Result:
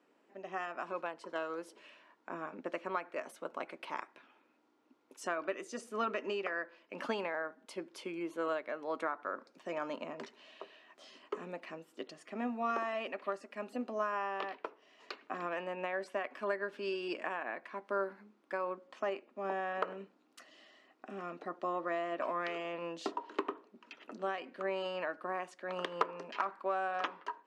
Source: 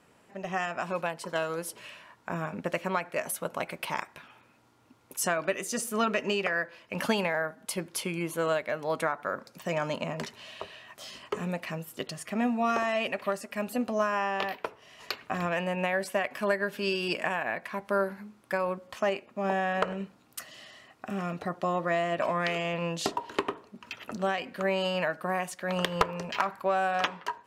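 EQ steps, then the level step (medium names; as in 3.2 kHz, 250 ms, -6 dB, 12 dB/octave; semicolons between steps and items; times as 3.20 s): dynamic bell 1.2 kHz, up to +6 dB, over -43 dBFS, Q 2; ladder high-pass 250 Hz, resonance 45%; distance through air 84 m; -1.5 dB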